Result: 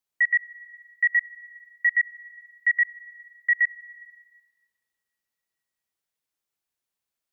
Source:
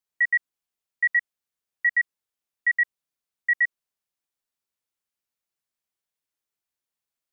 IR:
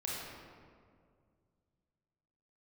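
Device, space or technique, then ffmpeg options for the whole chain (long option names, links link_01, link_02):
compressed reverb return: -filter_complex "[0:a]asplit=2[link_01][link_02];[1:a]atrim=start_sample=2205[link_03];[link_02][link_03]afir=irnorm=-1:irlink=0,acompressor=threshold=-27dB:ratio=6,volume=-13.5dB[link_04];[link_01][link_04]amix=inputs=2:normalize=0"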